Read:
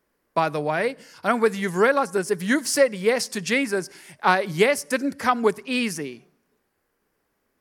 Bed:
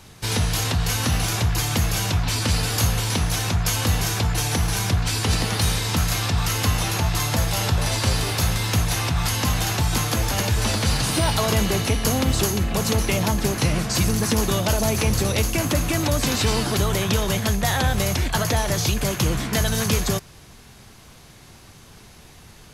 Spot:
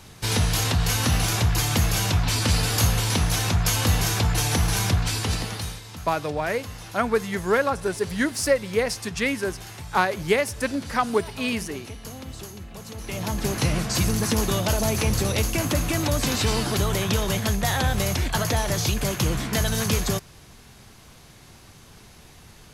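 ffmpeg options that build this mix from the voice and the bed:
-filter_complex "[0:a]adelay=5700,volume=0.75[s0];[1:a]volume=5.62,afade=t=out:st=4.86:d=0.96:silence=0.141254,afade=t=in:st=12.96:d=0.62:silence=0.177828[s1];[s0][s1]amix=inputs=2:normalize=0"

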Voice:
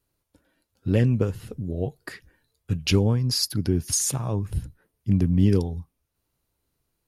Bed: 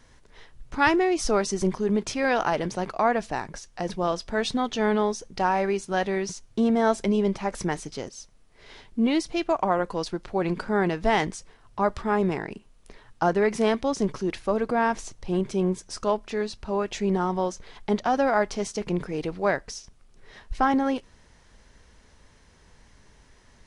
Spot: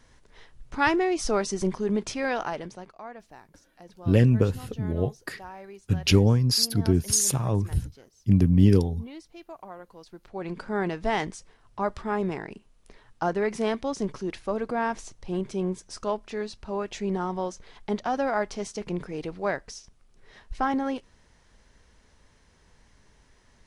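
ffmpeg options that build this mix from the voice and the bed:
-filter_complex "[0:a]adelay=3200,volume=1.19[s0];[1:a]volume=4.47,afade=t=out:st=2.07:d=0.87:silence=0.141254,afade=t=in:st=10.05:d=0.74:silence=0.177828[s1];[s0][s1]amix=inputs=2:normalize=0"

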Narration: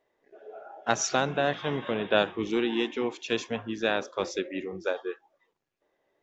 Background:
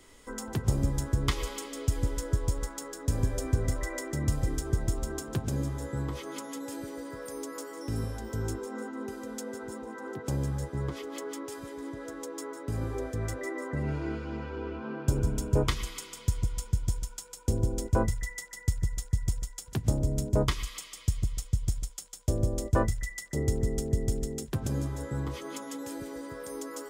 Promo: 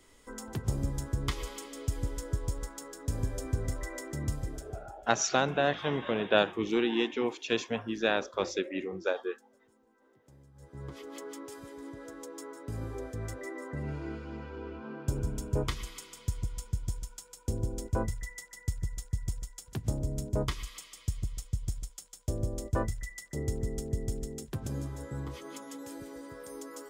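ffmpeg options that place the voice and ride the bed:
-filter_complex "[0:a]adelay=4200,volume=0.891[s0];[1:a]volume=7.94,afade=t=out:st=4.25:d=0.68:silence=0.0707946,afade=t=in:st=10.54:d=0.56:silence=0.0749894[s1];[s0][s1]amix=inputs=2:normalize=0"

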